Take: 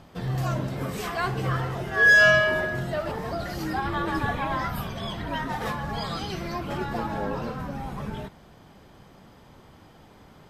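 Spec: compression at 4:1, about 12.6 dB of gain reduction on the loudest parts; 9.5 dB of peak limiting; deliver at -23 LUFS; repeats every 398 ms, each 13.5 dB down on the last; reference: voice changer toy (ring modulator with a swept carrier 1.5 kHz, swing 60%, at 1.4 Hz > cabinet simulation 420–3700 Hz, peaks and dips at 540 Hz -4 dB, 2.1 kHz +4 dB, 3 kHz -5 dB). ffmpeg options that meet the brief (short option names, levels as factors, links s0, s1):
-af "acompressor=threshold=0.0355:ratio=4,alimiter=level_in=1.88:limit=0.0631:level=0:latency=1,volume=0.531,aecho=1:1:398|796:0.211|0.0444,aeval=exprs='val(0)*sin(2*PI*1500*n/s+1500*0.6/1.4*sin(2*PI*1.4*n/s))':c=same,highpass=420,equalizer=f=540:t=q:w=4:g=-4,equalizer=f=2100:t=q:w=4:g=4,equalizer=f=3000:t=q:w=4:g=-5,lowpass=f=3700:w=0.5412,lowpass=f=3700:w=1.3066,volume=6.31"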